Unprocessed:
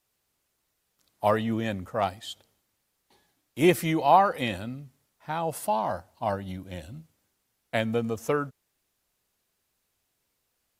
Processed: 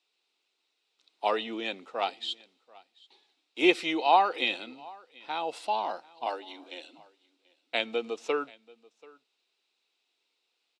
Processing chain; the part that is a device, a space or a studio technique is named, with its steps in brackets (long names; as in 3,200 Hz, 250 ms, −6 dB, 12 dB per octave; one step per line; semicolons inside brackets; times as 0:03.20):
0:06.26–0:06.98: Butterworth high-pass 240 Hz 96 dB per octave
phone speaker on a table (loudspeaker in its box 330–6,700 Hz, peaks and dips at 590 Hz −8 dB, 1,100 Hz −4 dB, 1,700 Hz −7 dB, 2,600 Hz +7 dB, 3,800 Hz +9 dB, 6,400 Hz −6 dB)
single-tap delay 735 ms −24 dB